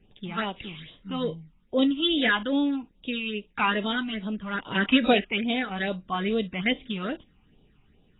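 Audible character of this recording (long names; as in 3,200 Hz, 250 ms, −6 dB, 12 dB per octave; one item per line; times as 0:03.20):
phaser sweep stages 8, 2.4 Hz, lowest notch 490–1,900 Hz
AAC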